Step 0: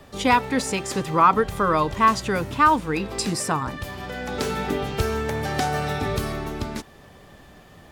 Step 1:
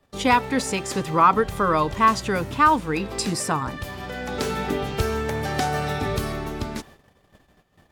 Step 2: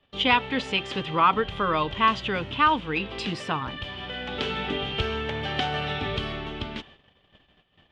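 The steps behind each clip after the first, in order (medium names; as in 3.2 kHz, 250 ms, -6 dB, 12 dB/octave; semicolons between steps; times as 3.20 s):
gate -45 dBFS, range -19 dB
resonant low-pass 3.1 kHz, resonance Q 5.7; trim -5 dB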